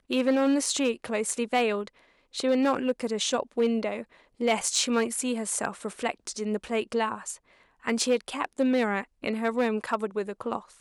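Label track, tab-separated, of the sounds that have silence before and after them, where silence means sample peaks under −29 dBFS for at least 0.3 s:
2.360000	4.010000	sound
4.410000	7.320000	sound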